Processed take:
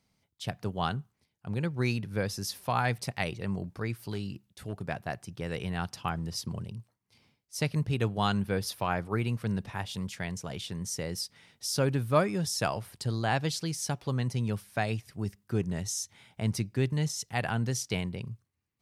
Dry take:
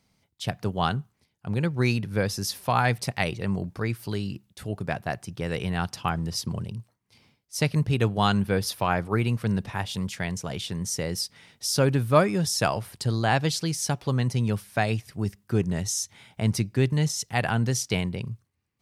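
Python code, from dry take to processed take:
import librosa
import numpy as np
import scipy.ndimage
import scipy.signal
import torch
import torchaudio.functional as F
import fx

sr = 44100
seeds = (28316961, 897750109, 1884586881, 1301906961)

y = fx.clip_hard(x, sr, threshold_db=-20.5, at=(4.05, 4.83))
y = y * librosa.db_to_amplitude(-5.5)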